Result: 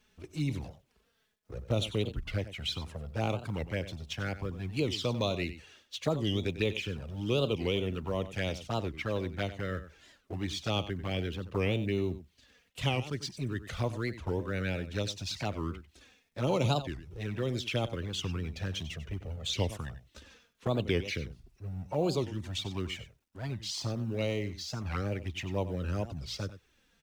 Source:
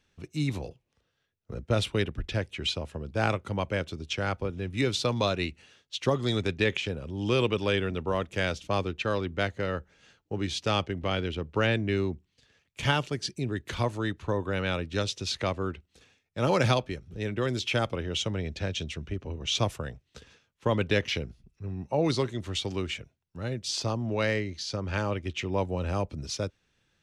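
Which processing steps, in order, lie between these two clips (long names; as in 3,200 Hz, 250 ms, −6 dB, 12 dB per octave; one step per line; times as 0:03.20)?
mu-law and A-law mismatch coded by mu
flanger swept by the level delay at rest 4.8 ms, full sweep at −22.5 dBFS
single-tap delay 95 ms −13.5 dB
wow of a warped record 45 rpm, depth 250 cents
level −3.5 dB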